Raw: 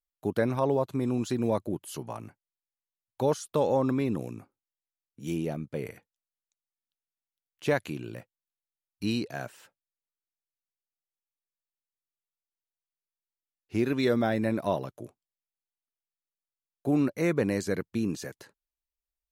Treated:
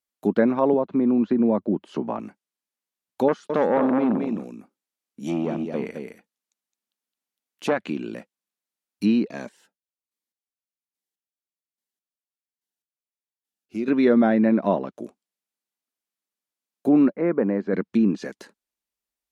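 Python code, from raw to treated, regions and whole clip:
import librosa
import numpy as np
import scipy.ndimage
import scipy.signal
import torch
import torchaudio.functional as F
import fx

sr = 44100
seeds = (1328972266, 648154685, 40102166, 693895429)

y = fx.chain(x, sr, fx.spacing_loss(db_at_10k=23),
    fx.band_squash(depth_pct=70), at=(0.73, 2.19))
y = fx.chain(y, sr, fx.echo_single(ms=215, db=-7.0),
    fx.transformer_sat(knee_hz=910.0), at=(3.28, 7.82))
y = fx.chain(y, sr, fx.chopper(hz=1.2, depth_pct=65, duty_pct=25),
    fx.notch_cascade(direction='falling', hz=1.3), at=(9.28, 13.88))
y = fx.chain(y, sr, fx.lowpass(hz=1400.0, slope=12),
    fx.low_shelf(hz=230.0, db=-9.0), at=(17.14, 17.73))
y = scipy.signal.sosfilt(scipy.signal.butter(2, 47.0, 'highpass', fs=sr, output='sos'), y)
y = fx.env_lowpass_down(y, sr, base_hz=2200.0, full_db=-26.0)
y = fx.low_shelf_res(y, sr, hz=160.0, db=-8.0, q=3.0)
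y = F.gain(torch.from_numpy(y), 5.5).numpy()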